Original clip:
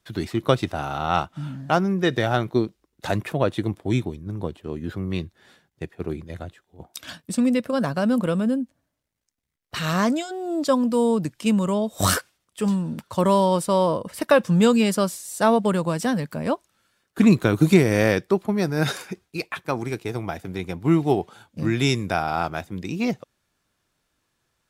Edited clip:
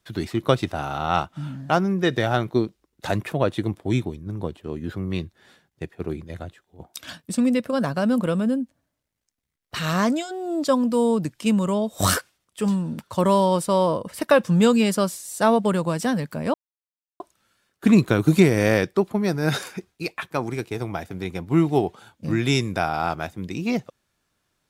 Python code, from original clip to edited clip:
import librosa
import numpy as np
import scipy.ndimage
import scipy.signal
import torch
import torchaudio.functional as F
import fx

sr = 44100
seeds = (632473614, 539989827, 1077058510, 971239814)

y = fx.edit(x, sr, fx.insert_silence(at_s=16.54, length_s=0.66), tone=tone)